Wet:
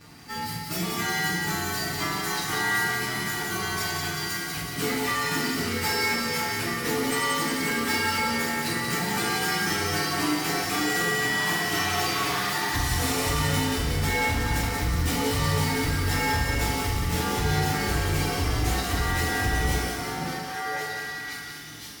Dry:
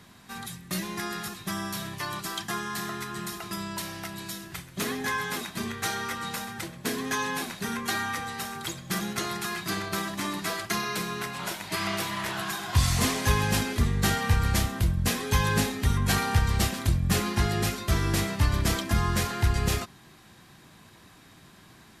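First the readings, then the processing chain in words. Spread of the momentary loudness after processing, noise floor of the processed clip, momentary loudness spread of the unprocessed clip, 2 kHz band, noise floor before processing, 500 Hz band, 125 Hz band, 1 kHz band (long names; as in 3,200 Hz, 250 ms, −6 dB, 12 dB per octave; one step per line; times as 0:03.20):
6 LU, −35 dBFS, 10 LU, +6.0 dB, −53 dBFS, +4.0 dB, −1.0 dB, +4.0 dB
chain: partials spread apart or drawn together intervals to 108%
echo through a band-pass that steps 530 ms, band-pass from 240 Hz, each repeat 1.4 octaves, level −2 dB
downward compressor 5 to 1, threshold −29 dBFS, peak gain reduction 10.5 dB
hard clipping −30.5 dBFS, distortion −13 dB
feedback echo with a high-pass in the loop 181 ms, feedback 63%, high-pass 1,100 Hz, level −4 dB
feedback delay network reverb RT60 1.1 s, low-frequency decay 0.8×, high-frequency decay 0.65×, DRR −4 dB
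level +4 dB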